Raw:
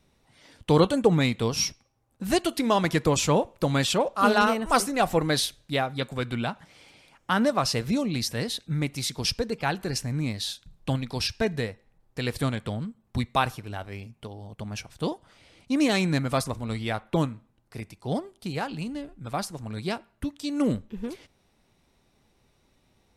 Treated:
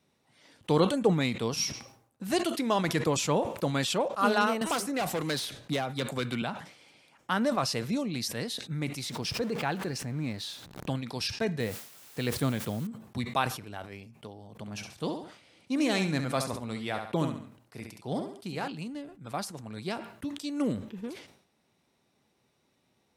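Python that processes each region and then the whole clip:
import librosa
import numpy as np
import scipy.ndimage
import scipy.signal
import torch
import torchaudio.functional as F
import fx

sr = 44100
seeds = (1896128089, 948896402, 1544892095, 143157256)

y = fx.chain(x, sr, fx.clip_hard(threshold_db=-22.0),
    fx.band_squash(depth_pct=100), at=(4.61, 6.42))
y = fx.chain(y, sr, fx.zero_step(step_db=-38.5),
    fx.high_shelf(hz=3900.0, db=-7.5),
    fx.pre_swell(db_per_s=69.0), at=(9.03, 10.9))
y = fx.chain(y, sr, fx.low_shelf(hz=480.0, db=5.0),
    fx.quant_dither(seeds[0], bits=8, dither='triangular'), at=(11.6, 12.87))
y = fx.chain(y, sr, fx.echo_feedback(ms=68, feedback_pct=28, wet_db=-9),
    fx.sustainer(db_per_s=110.0), at=(14.52, 18.68))
y = scipy.signal.sosfilt(scipy.signal.butter(2, 130.0, 'highpass', fs=sr, output='sos'), y)
y = fx.sustainer(y, sr, db_per_s=94.0)
y = F.gain(torch.from_numpy(y), -4.5).numpy()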